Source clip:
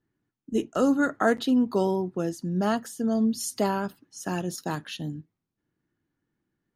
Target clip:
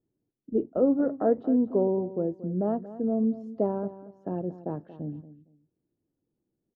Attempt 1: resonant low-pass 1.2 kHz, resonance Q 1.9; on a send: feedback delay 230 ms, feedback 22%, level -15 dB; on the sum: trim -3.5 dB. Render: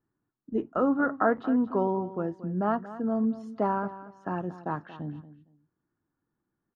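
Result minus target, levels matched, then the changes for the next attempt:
1 kHz band +9.0 dB
change: resonant low-pass 540 Hz, resonance Q 1.9

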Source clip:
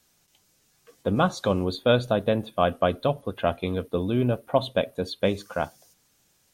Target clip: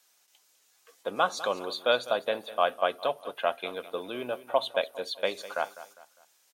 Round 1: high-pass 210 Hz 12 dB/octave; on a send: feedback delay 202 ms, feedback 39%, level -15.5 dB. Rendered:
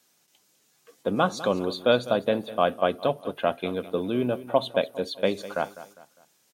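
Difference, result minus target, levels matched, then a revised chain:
250 Hz band +10.5 dB
high-pass 650 Hz 12 dB/octave; on a send: feedback delay 202 ms, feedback 39%, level -15.5 dB

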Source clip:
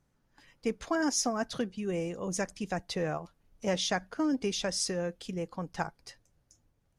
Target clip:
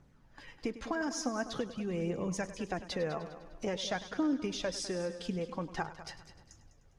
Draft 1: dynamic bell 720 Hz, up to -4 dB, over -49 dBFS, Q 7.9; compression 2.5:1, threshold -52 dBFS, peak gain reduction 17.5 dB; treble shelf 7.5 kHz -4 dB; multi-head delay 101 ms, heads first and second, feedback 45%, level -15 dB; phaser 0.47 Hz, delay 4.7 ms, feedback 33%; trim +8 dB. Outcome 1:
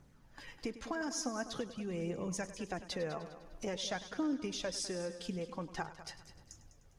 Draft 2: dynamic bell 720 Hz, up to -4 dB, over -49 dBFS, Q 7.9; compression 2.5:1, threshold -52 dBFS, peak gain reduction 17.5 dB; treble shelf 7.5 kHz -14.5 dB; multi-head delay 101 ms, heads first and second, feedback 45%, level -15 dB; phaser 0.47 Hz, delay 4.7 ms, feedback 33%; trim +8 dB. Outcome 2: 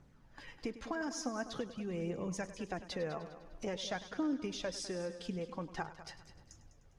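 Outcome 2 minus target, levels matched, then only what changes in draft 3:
compression: peak gain reduction +4 dB
change: compression 2.5:1, threshold -45.5 dBFS, peak gain reduction 13.5 dB

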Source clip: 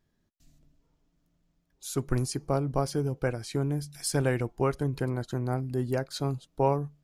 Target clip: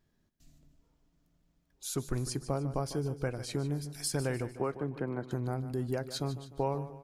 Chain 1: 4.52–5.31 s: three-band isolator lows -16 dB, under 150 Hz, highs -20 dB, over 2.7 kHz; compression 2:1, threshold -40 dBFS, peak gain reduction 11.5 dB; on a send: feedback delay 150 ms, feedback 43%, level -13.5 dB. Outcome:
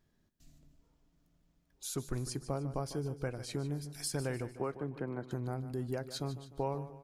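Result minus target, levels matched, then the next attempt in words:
compression: peak gain reduction +3.5 dB
4.52–5.31 s: three-band isolator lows -16 dB, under 150 Hz, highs -20 dB, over 2.7 kHz; compression 2:1, threshold -33 dBFS, peak gain reduction 8 dB; on a send: feedback delay 150 ms, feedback 43%, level -13.5 dB

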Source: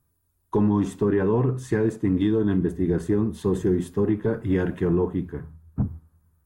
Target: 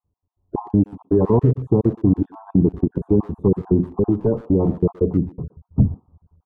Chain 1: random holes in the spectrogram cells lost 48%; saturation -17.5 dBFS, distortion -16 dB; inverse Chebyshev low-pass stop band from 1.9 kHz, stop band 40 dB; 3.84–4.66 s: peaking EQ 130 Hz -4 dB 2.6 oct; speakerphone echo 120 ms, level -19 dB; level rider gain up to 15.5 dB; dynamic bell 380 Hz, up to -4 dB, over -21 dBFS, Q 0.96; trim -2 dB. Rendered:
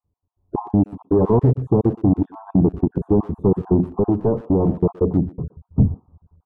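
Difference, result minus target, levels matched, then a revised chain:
saturation: distortion +17 dB
random holes in the spectrogram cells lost 48%; saturation -7.5 dBFS, distortion -32 dB; inverse Chebyshev low-pass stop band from 1.9 kHz, stop band 40 dB; 3.84–4.66 s: peaking EQ 130 Hz -4 dB 2.6 oct; speakerphone echo 120 ms, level -19 dB; level rider gain up to 15.5 dB; dynamic bell 380 Hz, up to -4 dB, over -21 dBFS, Q 0.96; trim -2 dB

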